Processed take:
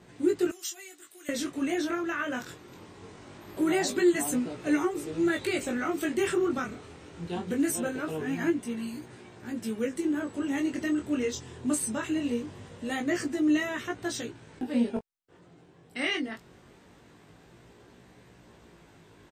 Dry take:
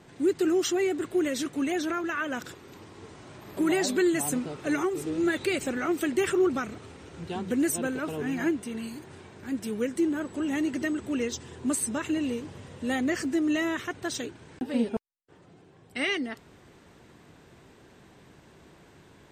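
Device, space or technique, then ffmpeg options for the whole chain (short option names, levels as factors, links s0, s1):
double-tracked vocal: -filter_complex "[0:a]asplit=2[s0][s1];[s1]adelay=17,volume=0.282[s2];[s0][s2]amix=inputs=2:normalize=0,flanger=delay=16.5:depth=7.3:speed=0.22,asettb=1/sr,asplit=3[s3][s4][s5];[s3]atrim=end=0.514[s6];[s4]atrim=start=0.51:end=1.29,asetpts=PTS-STARTPTS,afade=t=in:d=0.004:c=qsin,afade=t=out:st=0.776:d=0.004:c=qsin,aderivative[s7];[s5]atrim=start=1.286[s8];[s6][s7]acrossfade=d=0.004:c1=hsin:c2=qsin[s9];[s9][s8]acrossfade=d=0.004:c1=qsin:c2=hsin,volume=1.19"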